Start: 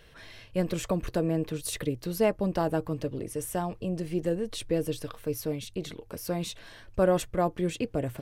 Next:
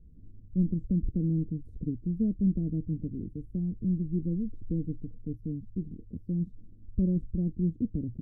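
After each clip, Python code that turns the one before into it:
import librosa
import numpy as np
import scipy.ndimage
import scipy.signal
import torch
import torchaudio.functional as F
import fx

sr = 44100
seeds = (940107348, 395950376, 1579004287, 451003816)

y = scipy.signal.sosfilt(scipy.signal.cheby2(4, 60, 830.0, 'lowpass', fs=sr, output='sos'), x)
y = fx.peak_eq(y, sr, hz=130.0, db=-11.5, octaves=0.33)
y = y * librosa.db_to_amplitude(6.5)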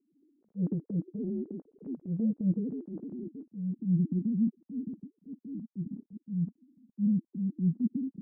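y = fx.sine_speech(x, sr)
y = fx.transient(y, sr, attack_db=-11, sustain_db=5)
y = fx.filter_sweep_lowpass(y, sr, from_hz=460.0, to_hz=230.0, start_s=2.79, end_s=4.27, q=2.4)
y = y * librosa.db_to_amplitude(-3.0)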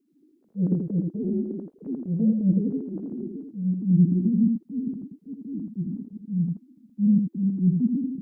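y = x + 10.0 ** (-4.5 / 20.0) * np.pad(x, (int(82 * sr / 1000.0), 0))[:len(x)]
y = y * librosa.db_to_amplitude(6.0)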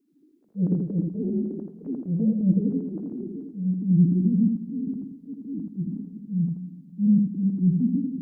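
y = fx.room_shoebox(x, sr, seeds[0], volume_m3=1100.0, walls='mixed', distance_m=0.39)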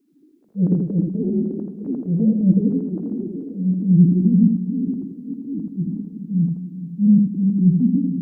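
y = fx.echo_stepped(x, sr, ms=424, hz=220.0, octaves=0.7, feedback_pct=70, wet_db=-12)
y = y * librosa.db_to_amplitude(5.5)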